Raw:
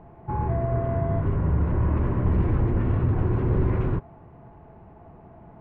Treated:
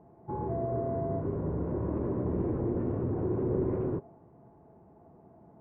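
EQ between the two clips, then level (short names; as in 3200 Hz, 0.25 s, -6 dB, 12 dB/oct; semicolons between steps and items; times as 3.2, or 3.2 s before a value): dynamic EQ 460 Hz, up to +6 dB, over -43 dBFS, Q 0.94; band-pass 350 Hz, Q 0.68; air absorption 60 m; -5.0 dB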